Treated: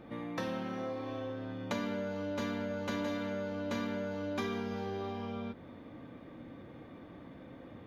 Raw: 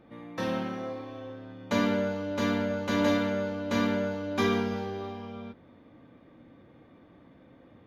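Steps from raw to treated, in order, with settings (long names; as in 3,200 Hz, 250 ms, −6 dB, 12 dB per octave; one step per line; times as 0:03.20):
downward compressor 4 to 1, threshold −41 dBFS, peak gain reduction 17 dB
level +5 dB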